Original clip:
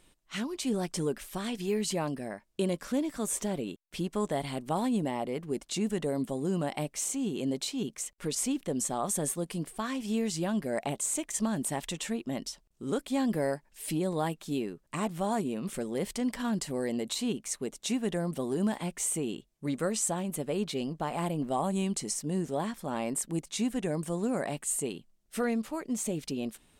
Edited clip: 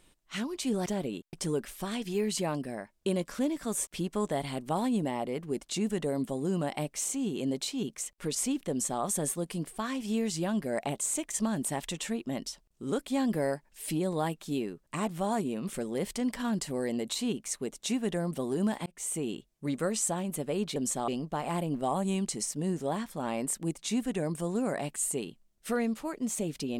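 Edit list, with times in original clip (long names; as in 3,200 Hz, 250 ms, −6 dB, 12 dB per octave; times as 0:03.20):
0:03.40–0:03.87: move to 0:00.86
0:08.70–0:09.02: duplicate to 0:20.76
0:18.86–0:19.34: fade in equal-power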